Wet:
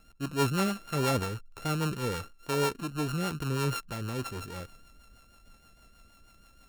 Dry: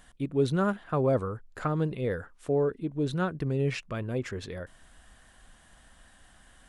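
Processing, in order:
samples sorted by size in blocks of 32 samples
transient designer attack −2 dB, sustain +4 dB
rotating-speaker cabinet horn 6.3 Hz

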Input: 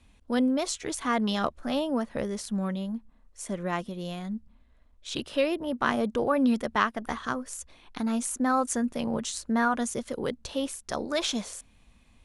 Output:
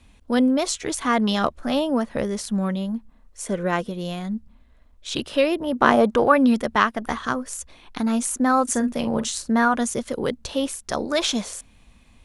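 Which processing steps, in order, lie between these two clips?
0:03.46–0:03.91: hollow resonant body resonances 460/1,500 Hz, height 11 dB
0:05.75–0:06.36: parametric band 340 Hz → 2,200 Hz +8 dB 2.1 octaves
0:08.64–0:09.54: double-tracking delay 45 ms −12 dB
level +6 dB

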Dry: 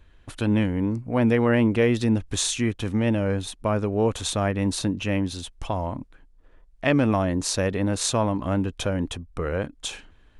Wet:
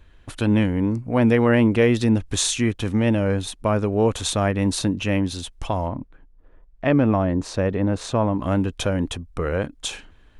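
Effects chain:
0:05.88–0:08.40: low-pass filter 1,300 Hz 6 dB per octave
level +3 dB

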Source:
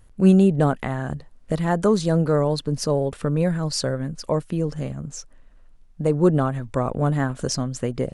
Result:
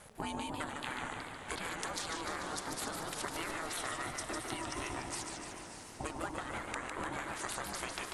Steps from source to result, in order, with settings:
gate on every frequency bin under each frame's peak −20 dB weak
0:03.77–0:05.00: EQ curve with evenly spaced ripples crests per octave 1.6, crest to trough 12 dB
downward compressor 12 to 1, threshold −47 dBFS, peak gain reduction 18.5 dB
feedback delay with all-pass diffusion 627 ms, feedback 41%, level −9.5 dB
ring modulation 320 Hz
feedback echo with a swinging delay time 148 ms, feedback 64%, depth 185 cents, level −5 dB
level +12.5 dB

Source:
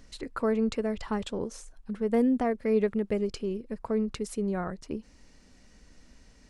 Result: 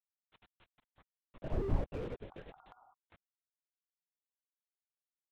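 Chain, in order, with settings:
pitch shifter swept by a sawtooth +3.5 semitones, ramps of 667 ms
source passing by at 0:02.10, 45 m/s, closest 2.3 metres
high-shelf EQ 2,900 Hz +3 dB
dead-zone distortion −53.5 dBFS
bit reduction 10 bits
healed spectral selection 0:02.73–0:03.55, 480–1,200 Hz before
speed change +22%
linear-prediction vocoder at 8 kHz whisper
slew-rate limiting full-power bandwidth 2.4 Hz
level +8 dB

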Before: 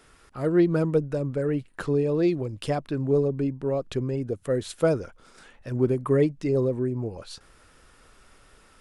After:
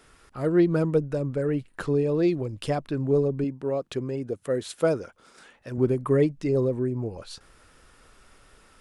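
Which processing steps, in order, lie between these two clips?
0:03.44–0:05.78: high-pass filter 190 Hz 6 dB per octave

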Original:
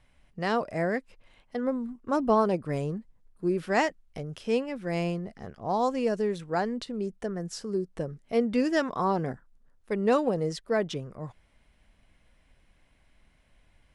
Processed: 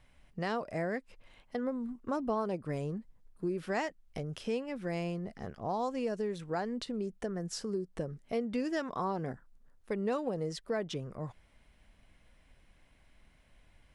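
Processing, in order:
downward compressor 2.5 to 1, threshold −34 dBFS, peak gain reduction 10.5 dB

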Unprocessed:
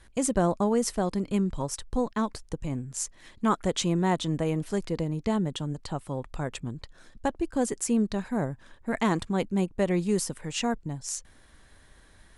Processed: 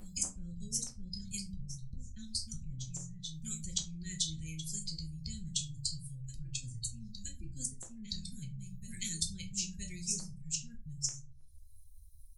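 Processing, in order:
spectral dynamics exaggerated over time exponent 2
Chebyshev band-stop filter 120–6,200 Hz, order 3
guitar amp tone stack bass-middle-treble 10-0-10
on a send: backwards echo 969 ms −13.5 dB
on the sum: downward compressor 6 to 1, threshold −45 dBFS, peak gain reduction 15 dB
gain into a clipping stage and back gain 34.5 dB
double-tracking delay 31 ms −13.5 dB
treble cut that deepens with the level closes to 960 Hz, closed at −48 dBFS
rectangular room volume 120 cubic metres, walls furnished, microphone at 1 metre
every bin compressed towards the loudest bin 4 to 1
level +16 dB

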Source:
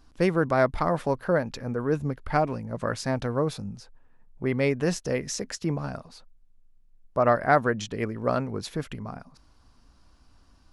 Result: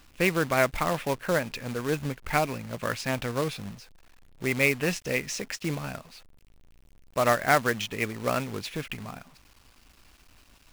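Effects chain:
parametric band 2,500 Hz +14.5 dB 0.88 octaves
log-companded quantiser 4 bits
level −3.5 dB

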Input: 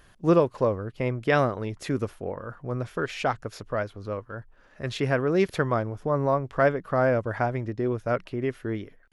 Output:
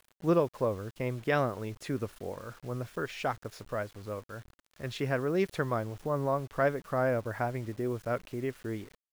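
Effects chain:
bit-depth reduction 8 bits, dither none
level −6 dB

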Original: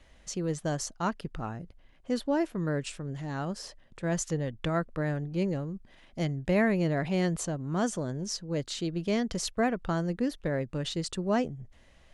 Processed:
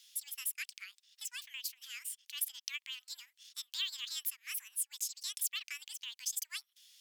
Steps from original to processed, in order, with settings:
Bessel high-pass filter 2,100 Hz, order 6
in parallel at 0 dB: downward compressor, threshold −54 dBFS, peak gain reduction 21.5 dB
on the sum: wrong playback speed 45 rpm record played at 78 rpm
level +1 dB

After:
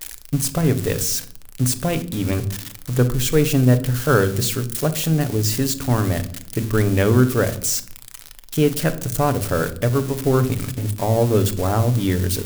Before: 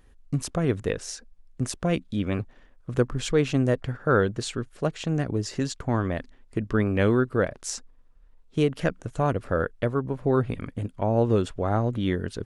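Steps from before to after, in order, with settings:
spike at every zero crossing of −21 dBFS
on a send: low-shelf EQ 240 Hz +9 dB + convolution reverb RT60 0.60 s, pre-delay 7 ms, DRR 9.5 dB
on the sum: level +3.5 dB

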